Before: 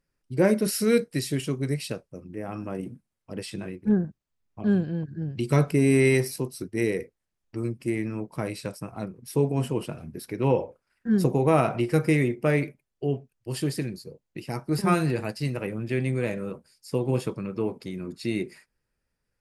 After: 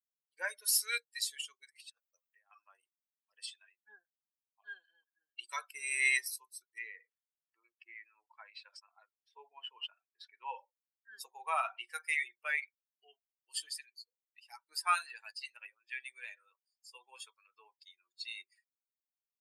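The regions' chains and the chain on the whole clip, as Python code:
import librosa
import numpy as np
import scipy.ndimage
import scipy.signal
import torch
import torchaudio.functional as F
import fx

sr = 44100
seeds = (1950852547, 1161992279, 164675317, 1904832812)

y = fx.chain(x, sr, fx.steep_highpass(hz=440.0, slope=36),
    fx.over_compress(threshold_db=-41.0, ratio=-0.5), at=(1.67, 2.51))
y = fx.chain(y, sr, fx.lowpass(hz=2700.0, slope=12),
    fx.sustainer(db_per_s=130.0), at=(6.78, 10.48))
y = fx.bin_expand(y, sr, power=2.0)
y = scipy.signal.sosfilt(scipy.signal.bessel(6, 1500.0, 'highpass', norm='mag', fs=sr, output='sos'), y)
y = fx.notch(y, sr, hz=5700.0, q=25.0)
y = y * librosa.db_to_amplitude(4.0)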